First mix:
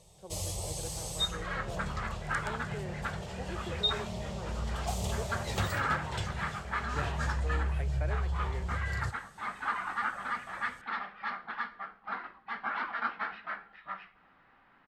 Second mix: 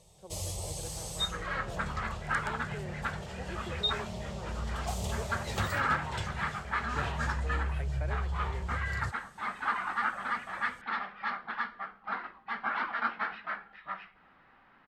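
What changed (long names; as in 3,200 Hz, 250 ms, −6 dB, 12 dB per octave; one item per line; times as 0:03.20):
second sound +3.5 dB
reverb: off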